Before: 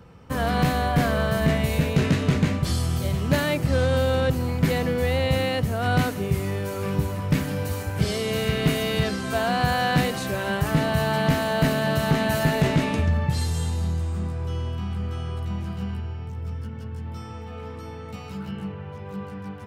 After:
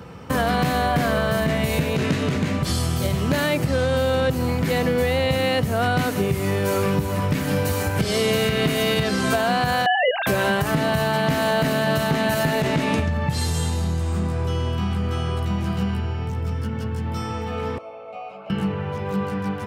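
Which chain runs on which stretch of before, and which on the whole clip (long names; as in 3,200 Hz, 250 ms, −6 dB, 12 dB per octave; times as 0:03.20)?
0:09.86–0:10.27: three sine waves on the formant tracks + notch filter 1,100 Hz, Q 7.2
0:17.78–0:18.50: formant filter a + hollow resonant body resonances 590/2,100 Hz, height 18 dB
whole clip: downward compressor, threshold −27 dBFS; high-pass filter 120 Hz 6 dB per octave; boost into a limiter +20 dB; level −9 dB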